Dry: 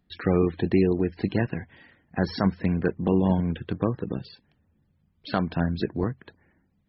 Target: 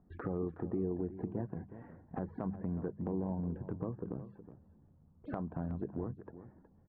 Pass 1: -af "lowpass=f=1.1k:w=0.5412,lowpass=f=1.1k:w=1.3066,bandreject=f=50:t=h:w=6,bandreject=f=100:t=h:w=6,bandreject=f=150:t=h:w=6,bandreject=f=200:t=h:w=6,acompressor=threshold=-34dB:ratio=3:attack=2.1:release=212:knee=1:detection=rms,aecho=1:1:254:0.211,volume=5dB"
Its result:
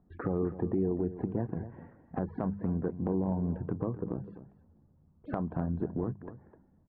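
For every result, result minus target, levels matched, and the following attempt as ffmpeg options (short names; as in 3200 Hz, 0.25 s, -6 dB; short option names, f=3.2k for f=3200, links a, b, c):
echo 0.114 s early; compressor: peak gain reduction -5.5 dB
-af "lowpass=f=1.1k:w=0.5412,lowpass=f=1.1k:w=1.3066,bandreject=f=50:t=h:w=6,bandreject=f=100:t=h:w=6,bandreject=f=150:t=h:w=6,bandreject=f=200:t=h:w=6,acompressor=threshold=-34dB:ratio=3:attack=2.1:release=212:knee=1:detection=rms,aecho=1:1:368:0.211,volume=5dB"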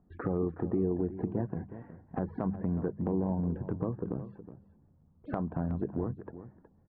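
compressor: peak gain reduction -5.5 dB
-af "lowpass=f=1.1k:w=0.5412,lowpass=f=1.1k:w=1.3066,bandreject=f=50:t=h:w=6,bandreject=f=100:t=h:w=6,bandreject=f=150:t=h:w=6,bandreject=f=200:t=h:w=6,acompressor=threshold=-42.5dB:ratio=3:attack=2.1:release=212:knee=1:detection=rms,aecho=1:1:368:0.211,volume=5dB"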